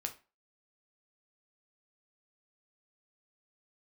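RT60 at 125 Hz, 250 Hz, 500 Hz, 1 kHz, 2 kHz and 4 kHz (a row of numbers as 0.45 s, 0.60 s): 0.25 s, 0.30 s, 0.30 s, 0.30 s, 0.30 s, 0.25 s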